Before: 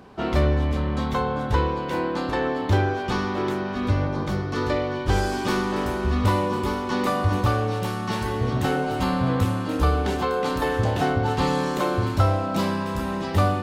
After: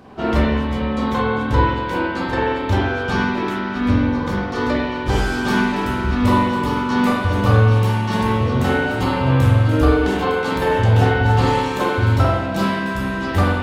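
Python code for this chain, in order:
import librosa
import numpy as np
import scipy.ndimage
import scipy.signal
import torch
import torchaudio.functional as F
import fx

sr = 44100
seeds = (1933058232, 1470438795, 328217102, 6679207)

y = fx.rev_spring(x, sr, rt60_s=1.0, pass_ms=(45,), chirp_ms=50, drr_db=-4.0)
y = y * librosa.db_to_amplitude(1.5)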